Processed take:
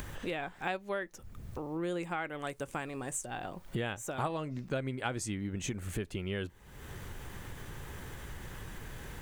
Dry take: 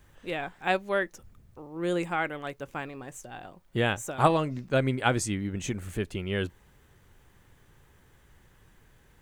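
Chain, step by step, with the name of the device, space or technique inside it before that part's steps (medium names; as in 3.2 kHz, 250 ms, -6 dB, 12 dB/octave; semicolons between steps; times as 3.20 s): 2.39–3.26 s: peaking EQ 8.7 kHz +12 dB 0.66 oct; upward and downward compression (upward compressor, threshold -42 dBFS; compression 4:1, threshold -43 dBFS, peak gain reduction 22 dB); trim +7.5 dB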